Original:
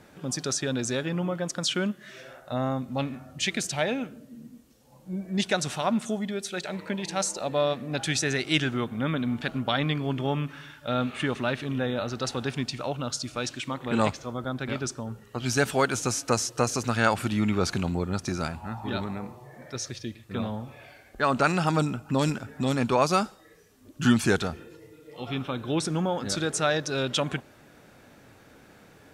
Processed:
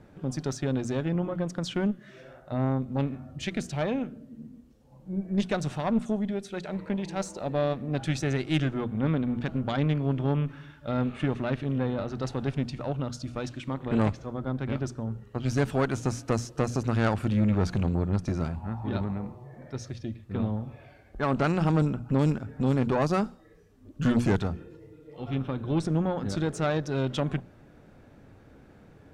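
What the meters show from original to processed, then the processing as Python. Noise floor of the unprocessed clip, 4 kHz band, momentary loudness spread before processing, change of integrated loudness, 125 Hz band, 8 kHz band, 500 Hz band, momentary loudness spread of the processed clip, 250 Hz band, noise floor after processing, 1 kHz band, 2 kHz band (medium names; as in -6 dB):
-54 dBFS, -10.0 dB, 12 LU, -1.0 dB, +3.5 dB, -12.5 dB, -2.0 dB, 10 LU, +1.0 dB, -54 dBFS, -5.0 dB, -7.0 dB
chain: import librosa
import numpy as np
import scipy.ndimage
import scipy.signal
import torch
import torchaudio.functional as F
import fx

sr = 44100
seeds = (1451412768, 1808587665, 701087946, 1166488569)

y = fx.tilt_eq(x, sr, slope=-3.0)
y = fx.hum_notches(y, sr, base_hz=60, count=4)
y = fx.tube_stage(y, sr, drive_db=15.0, bias=0.6)
y = F.gain(torch.from_numpy(y), -1.5).numpy()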